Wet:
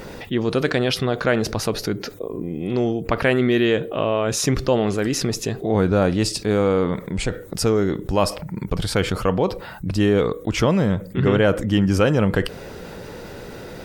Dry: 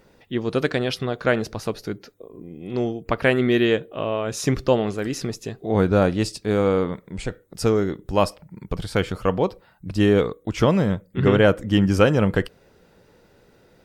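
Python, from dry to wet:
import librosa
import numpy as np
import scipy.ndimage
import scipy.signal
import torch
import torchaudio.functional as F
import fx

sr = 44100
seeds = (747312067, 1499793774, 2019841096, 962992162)

y = fx.env_flatten(x, sr, amount_pct=50)
y = y * 10.0 ** (-2.5 / 20.0)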